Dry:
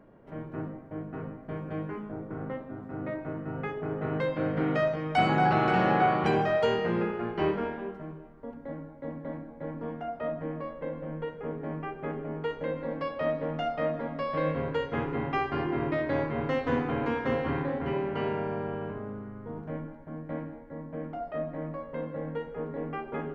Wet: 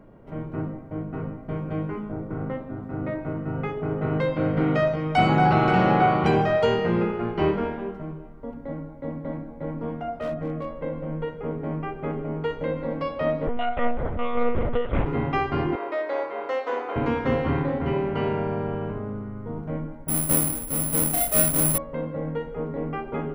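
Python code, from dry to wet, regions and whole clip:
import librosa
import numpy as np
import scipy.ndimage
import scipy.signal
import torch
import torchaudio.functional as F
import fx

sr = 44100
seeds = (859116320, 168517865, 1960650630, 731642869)

y = fx.chain(x, sr, fx.notch(hz=930.0, q=9.0),
    fx.clip_hard(threshold_db=-29.0), at=(10.19, 10.71))
y = fx.chain(y, sr, fx.lpc_monotone(seeds[0], pitch_hz=240.0, order=10),
    fx.doppler_dist(depth_ms=0.19), at=(13.47, 15.06))
y = fx.chain(y, sr, fx.highpass(hz=450.0, slope=24),
    fx.peak_eq(hz=2800.0, db=-4.0, octaves=1.4), at=(15.75, 16.96))
y = fx.chain(y, sr, fx.halfwave_hold(),
    fx.lowpass(hz=2900.0, slope=6),
    fx.resample_bad(factor=4, down='none', up='zero_stuff'), at=(20.08, 21.78))
y = fx.low_shelf(y, sr, hz=120.0, db=9.0)
y = fx.notch(y, sr, hz=1700.0, q=11.0)
y = y * 10.0 ** (4.0 / 20.0)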